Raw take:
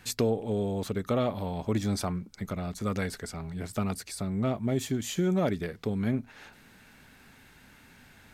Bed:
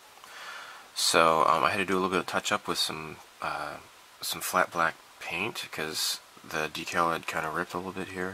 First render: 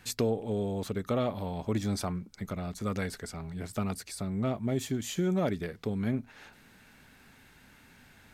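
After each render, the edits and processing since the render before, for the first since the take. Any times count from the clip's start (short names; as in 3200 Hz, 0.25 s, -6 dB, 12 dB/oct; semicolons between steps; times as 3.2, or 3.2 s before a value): gain -2 dB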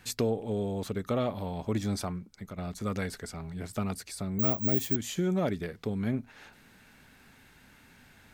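1.92–2.58 fade out, to -7 dB; 4.39–4.96 careless resampling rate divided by 2×, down none, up zero stuff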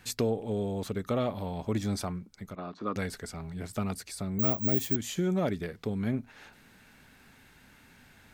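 2.55–2.96 speaker cabinet 240–3800 Hz, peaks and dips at 310 Hz +7 dB, 1100 Hz +8 dB, 2100 Hz -9 dB, 3200 Hz -4 dB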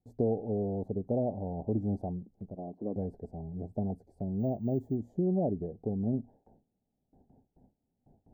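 elliptic low-pass 770 Hz, stop band 40 dB; gate with hold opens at -51 dBFS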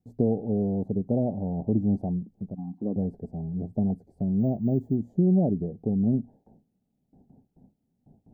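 bell 180 Hz +9.5 dB 1.6 oct; 2.55–2.81 spectral gain 320–720 Hz -28 dB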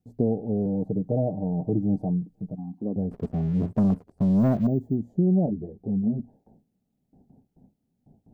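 0.65–2.57 comb 6.5 ms, depth 69%; 3.11–4.67 sample leveller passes 2; 5.46–6.2 ensemble effect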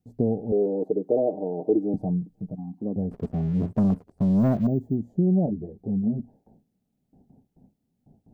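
0.52–1.94 resonant high-pass 380 Hz, resonance Q 3.2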